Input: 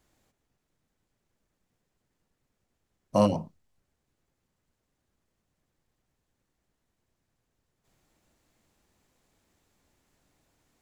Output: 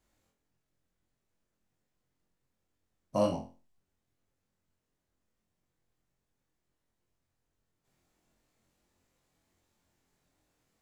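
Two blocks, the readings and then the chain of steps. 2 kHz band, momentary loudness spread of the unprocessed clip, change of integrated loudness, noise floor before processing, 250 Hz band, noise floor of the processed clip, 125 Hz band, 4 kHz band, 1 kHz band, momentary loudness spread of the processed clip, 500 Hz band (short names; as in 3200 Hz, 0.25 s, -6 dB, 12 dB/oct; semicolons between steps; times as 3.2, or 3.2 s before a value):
-5.5 dB, 8 LU, -5.5 dB, -81 dBFS, -7.5 dB, -83 dBFS, -8.5 dB, -5.0 dB, -6.5 dB, 15 LU, -4.0 dB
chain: flutter echo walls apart 3.9 m, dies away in 0.32 s; gain -7 dB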